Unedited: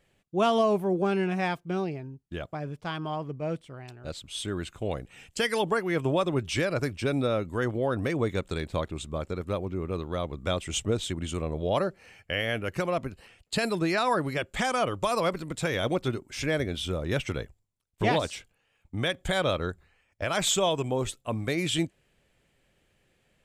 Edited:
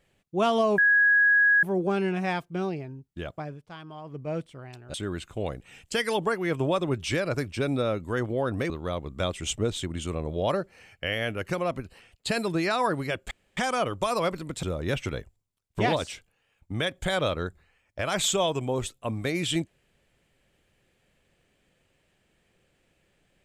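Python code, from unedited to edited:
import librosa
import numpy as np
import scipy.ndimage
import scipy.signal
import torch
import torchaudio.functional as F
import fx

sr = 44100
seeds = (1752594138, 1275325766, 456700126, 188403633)

y = fx.edit(x, sr, fx.insert_tone(at_s=0.78, length_s=0.85, hz=1660.0, db=-16.5),
    fx.fade_down_up(start_s=2.56, length_s=0.81, db=-9.5, fade_s=0.19),
    fx.cut(start_s=4.09, length_s=0.3),
    fx.cut(start_s=8.15, length_s=1.82),
    fx.insert_room_tone(at_s=14.58, length_s=0.26),
    fx.cut(start_s=15.64, length_s=1.22), tone=tone)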